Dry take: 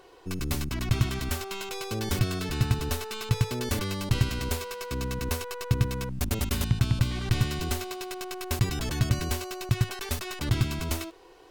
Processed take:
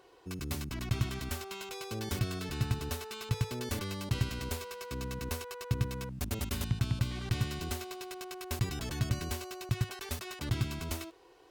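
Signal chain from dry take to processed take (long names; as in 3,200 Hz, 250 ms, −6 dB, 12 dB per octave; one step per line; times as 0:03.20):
high-pass filter 44 Hz
level −6.5 dB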